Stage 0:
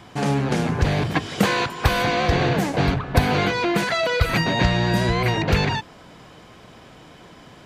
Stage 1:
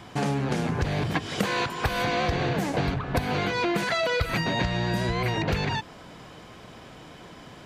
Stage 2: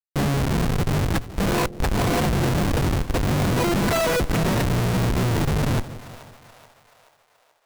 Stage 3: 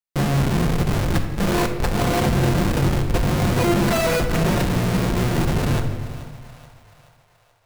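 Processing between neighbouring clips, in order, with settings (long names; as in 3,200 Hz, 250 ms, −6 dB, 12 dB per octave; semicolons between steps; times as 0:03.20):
downward compressor 5 to 1, threshold −23 dBFS, peak gain reduction 12 dB
comparator with hysteresis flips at −23.5 dBFS; echo with a time of its own for lows and highs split 580 Hz, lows 178 ms, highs 429 ms, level −15 dB; level +7 dB
rectangular room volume 900 cubic metres, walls mixed, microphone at 0.88 metres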